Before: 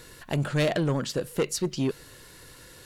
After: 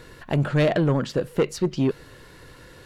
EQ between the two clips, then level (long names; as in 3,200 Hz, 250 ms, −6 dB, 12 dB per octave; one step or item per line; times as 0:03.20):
high-shelf EQ 3,800 Hz −10 dB
parametric band 10,000 Hz −4.5 dB 1.7 octaves
+5.0 dB